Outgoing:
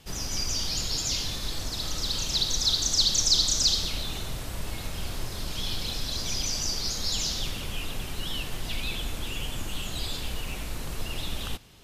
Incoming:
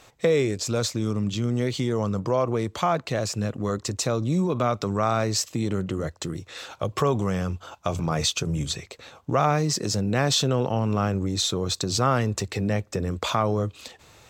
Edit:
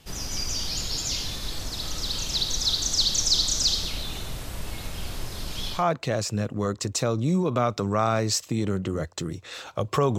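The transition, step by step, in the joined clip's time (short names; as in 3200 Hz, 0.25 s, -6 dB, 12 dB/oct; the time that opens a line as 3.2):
outgoing
5.76 switch to incoming from 2.8 s, crossfade 0.18 s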